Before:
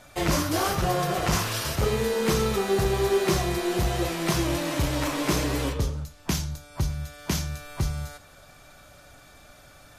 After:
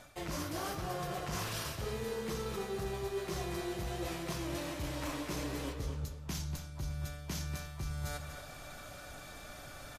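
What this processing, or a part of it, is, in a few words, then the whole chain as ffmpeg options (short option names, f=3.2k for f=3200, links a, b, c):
compression on the reversed sound: -filter_complex "[0:a]areverse,acompressor=threshold=-38dB:ratio=10,areverse,asplit=2[a][b];[b]adelay=239.1,volume=-8dB,highshelf=f=4k:g=-5.38[c];[a][c]amix=inputs=2:normalize=0,volume=2dB"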